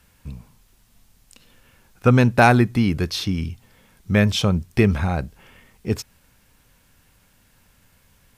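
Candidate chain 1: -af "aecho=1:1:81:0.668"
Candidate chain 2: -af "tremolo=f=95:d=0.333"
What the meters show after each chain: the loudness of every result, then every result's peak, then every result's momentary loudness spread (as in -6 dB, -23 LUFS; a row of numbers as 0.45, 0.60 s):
-18.0, -21.5 LUFS; -1.5, -2.5 dBFS; 17, 14 LU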